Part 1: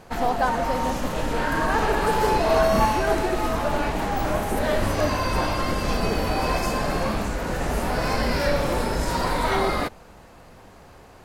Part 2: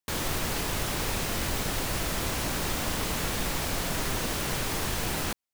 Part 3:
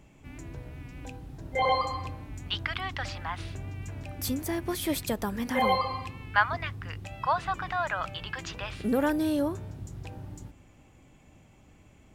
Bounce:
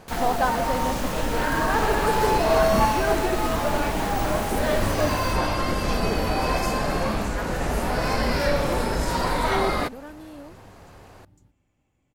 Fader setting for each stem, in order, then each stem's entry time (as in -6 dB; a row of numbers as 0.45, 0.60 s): 0.0, -6.0, -15.0 dB; 0.00, 0.00, 1.00 s